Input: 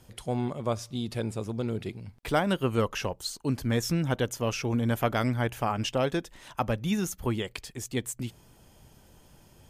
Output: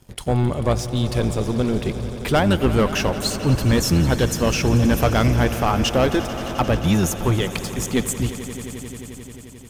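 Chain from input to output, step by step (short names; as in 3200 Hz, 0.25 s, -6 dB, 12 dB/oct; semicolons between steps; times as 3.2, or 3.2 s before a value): octaver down 1 oct, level -3 dB; sample leveller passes 2; swelling echo 88 ms, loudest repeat 5, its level -17 dB; gain +2.5 dB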